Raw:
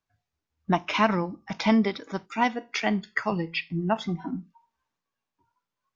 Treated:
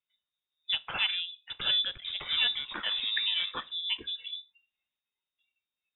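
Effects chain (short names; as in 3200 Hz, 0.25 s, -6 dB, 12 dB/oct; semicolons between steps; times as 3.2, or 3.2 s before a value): 1.18–3.81 echoes that change speed 0.432 s, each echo -6 st, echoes 2; inverted band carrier 3700 Hz; gain -7.5 dB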